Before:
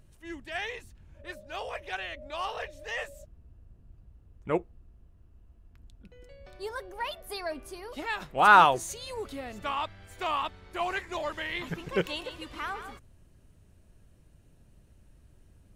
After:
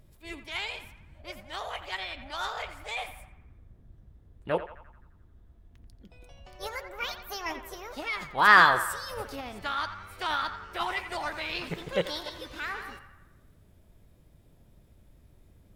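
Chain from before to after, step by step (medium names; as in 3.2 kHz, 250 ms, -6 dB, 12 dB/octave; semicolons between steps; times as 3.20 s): formant shift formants +4 st; band-passed feedback delay 87 ms, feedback 61%, band-pass 1.4 kHz, level -9.5 dB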